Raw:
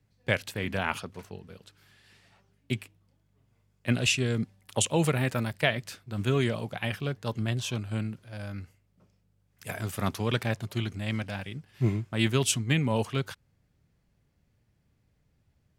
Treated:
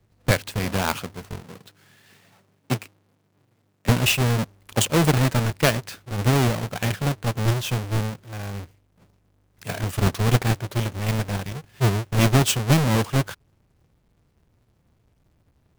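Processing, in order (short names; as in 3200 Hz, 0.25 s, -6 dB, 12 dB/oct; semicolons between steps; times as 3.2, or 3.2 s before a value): half-waves squared off; 1.41–3.89 HPF 110 Hz 24 dB/oct; gain +1.5 dB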